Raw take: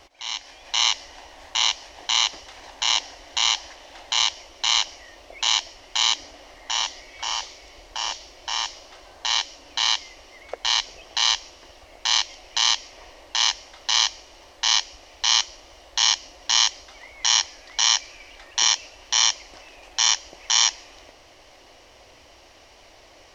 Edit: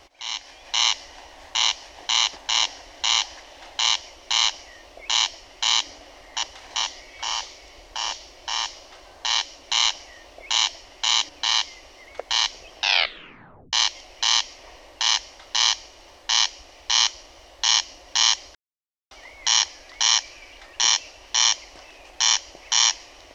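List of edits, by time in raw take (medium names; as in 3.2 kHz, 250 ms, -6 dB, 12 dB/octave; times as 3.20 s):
2.36–2.69 s: move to 6.76 s
4.55–6.21 s: copy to 9.63 s
11.10 s: tape stop 0.97 s
16.89 s: insert silence 0.56 s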